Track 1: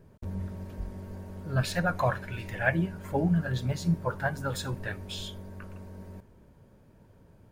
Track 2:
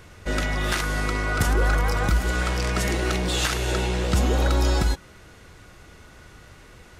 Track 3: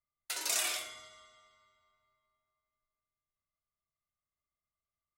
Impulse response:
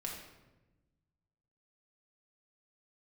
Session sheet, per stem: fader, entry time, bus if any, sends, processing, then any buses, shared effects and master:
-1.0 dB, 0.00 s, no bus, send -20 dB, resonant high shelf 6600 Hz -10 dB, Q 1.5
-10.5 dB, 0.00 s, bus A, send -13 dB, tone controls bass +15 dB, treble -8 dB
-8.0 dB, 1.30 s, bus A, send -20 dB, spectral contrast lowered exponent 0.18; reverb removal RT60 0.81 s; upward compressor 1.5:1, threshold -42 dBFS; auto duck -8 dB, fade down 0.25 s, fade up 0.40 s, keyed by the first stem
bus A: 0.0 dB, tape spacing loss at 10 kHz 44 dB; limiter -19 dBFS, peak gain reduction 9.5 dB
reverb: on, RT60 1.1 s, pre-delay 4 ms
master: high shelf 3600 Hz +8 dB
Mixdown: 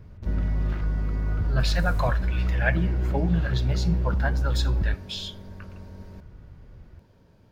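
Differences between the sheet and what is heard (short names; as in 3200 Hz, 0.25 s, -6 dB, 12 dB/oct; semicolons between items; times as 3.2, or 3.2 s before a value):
stem 2: send off; stem 3: missing reverb removal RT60 0.81 s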